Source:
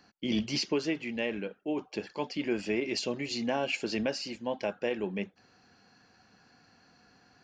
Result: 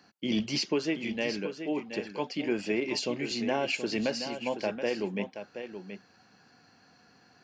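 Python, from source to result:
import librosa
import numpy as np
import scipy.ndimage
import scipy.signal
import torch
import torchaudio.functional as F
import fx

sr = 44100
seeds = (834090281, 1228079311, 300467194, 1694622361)

y = scipy.signal.sosfilt(scipy.signal.butter(2, 91.0, 'highpass', fs=sr, output='sos'), x)
y = y + 10.0 ** (-9.5 / 20.0) * np.pad(y, (int(726 * sr / 1000.0), 0))[:len(y)]
y = y * 10.0 ** (1.0 / 20.0)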